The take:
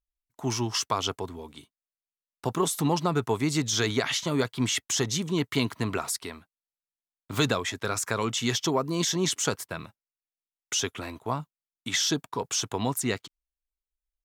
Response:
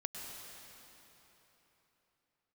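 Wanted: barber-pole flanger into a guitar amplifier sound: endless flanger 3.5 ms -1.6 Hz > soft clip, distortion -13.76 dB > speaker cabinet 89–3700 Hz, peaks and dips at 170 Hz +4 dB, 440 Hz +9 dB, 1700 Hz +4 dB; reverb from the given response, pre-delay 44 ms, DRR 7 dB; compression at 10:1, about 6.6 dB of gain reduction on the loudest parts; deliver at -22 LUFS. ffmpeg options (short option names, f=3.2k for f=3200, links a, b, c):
-filter_complex "[0:a]acompressor=threshold=-27dB:ratio=10,asplit=2[a][b];[1:a]atrim=start_sample=2205,adelay=44[c];[b][c]afir=irnorm=-1:irlink=0,volume=-7dB[d];[a][d]amix=inputs=2:normalize=0,asplit=2[e][f];[f]adelay=3.5,afreqshift=-1.6[g];[e][g]amix=inputs=2:normalize=1,asoftclip=threshold=-29.5dB,highpass=89,equalizer=f=170:t=q:w=4:g=4,equalizer=f=440:t=q:w=4:g=9,equalizer=f=1.7k:t=q:w=4:g=4,lowpass=f=3.7k:w=0.5412,lowpass=f=3.7k:w=1.3066,volume=15dB"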